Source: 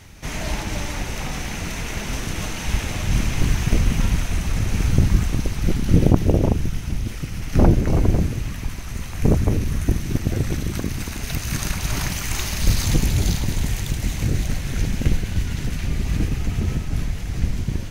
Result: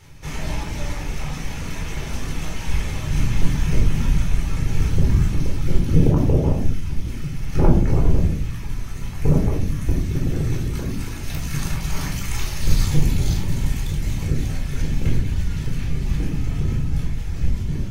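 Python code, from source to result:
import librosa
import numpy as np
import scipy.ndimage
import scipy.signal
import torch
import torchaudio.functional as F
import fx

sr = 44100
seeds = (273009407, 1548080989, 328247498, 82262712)

y = fx.dereverb_blind(x, sr, rt60_s=0.77)
y = fx.room_shoebox(y, sr, seeds[0], volume_m3=830.0, walls='furnished', distance_m=4.2)
y = F.gain(torch.from_numpy(y), -7.0).numpy()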